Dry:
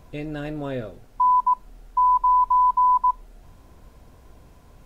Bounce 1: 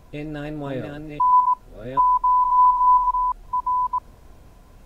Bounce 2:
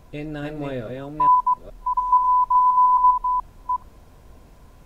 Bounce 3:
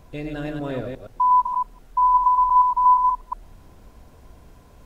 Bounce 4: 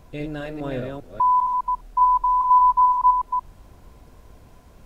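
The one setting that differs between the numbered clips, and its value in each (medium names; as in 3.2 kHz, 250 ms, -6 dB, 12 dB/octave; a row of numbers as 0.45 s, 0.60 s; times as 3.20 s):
chunks repeated in reverse, time: 664 ms, 425 ms, 119 ms, 201 ms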